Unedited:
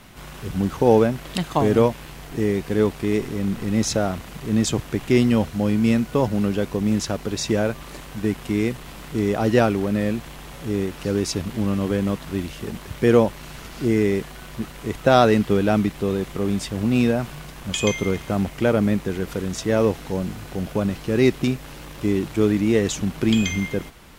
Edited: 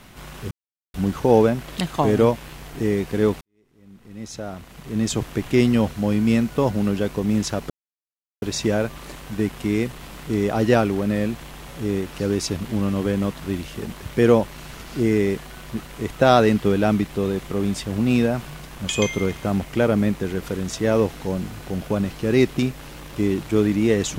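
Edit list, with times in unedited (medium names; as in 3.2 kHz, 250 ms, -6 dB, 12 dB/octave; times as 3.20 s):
0.51 s: insert silence 0.43 s
2.98–4.85 s: fade in quadratic
7.27 s: insert silence 0.72 s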